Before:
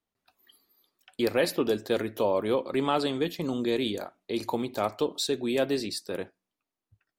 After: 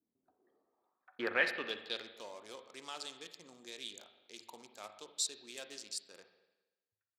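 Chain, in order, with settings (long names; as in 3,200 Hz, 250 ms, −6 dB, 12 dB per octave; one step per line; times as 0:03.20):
adaptive Wiener filter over 15 samples
band-pass filter sweep 290 Hz → 7,300 Hz, 0:00.15–0:02.29
bass and treble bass +4 dB, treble −3 dB
spring reverb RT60 1.1 s, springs 39/58 ms, chirp 25 ms, DRR 8.5 dB
level +6 dB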